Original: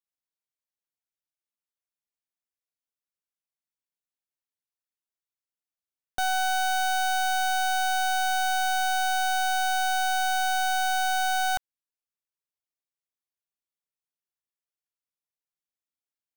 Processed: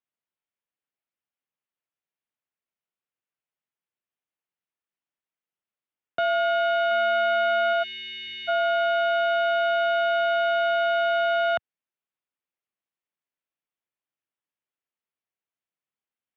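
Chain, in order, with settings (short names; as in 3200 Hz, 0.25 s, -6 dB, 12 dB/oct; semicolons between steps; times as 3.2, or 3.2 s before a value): 7.83–8.48 spectral delete 460–1600 Hz; mistuned SSB -72 Hz 170–3300 Hz; 6.91–7.73 small resonant body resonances 220/1300/2100 Hz, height 10 dB; gain +3.5 dB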